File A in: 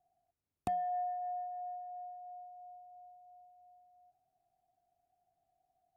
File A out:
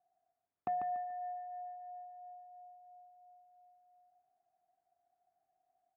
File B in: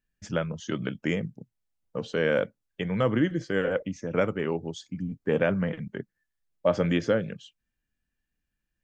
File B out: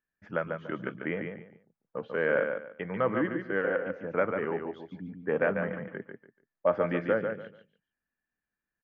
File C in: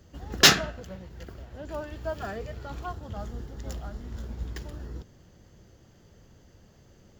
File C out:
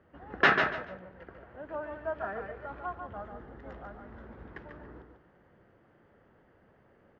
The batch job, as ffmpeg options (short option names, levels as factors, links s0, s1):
-af "lowpass=f=1800:w=0.5412,lowpass=f=1800:w=1.3066,aemphasis=mode=production:type=riaa,aecho=1:1:144|288|432:0.501|0.12|0.0289"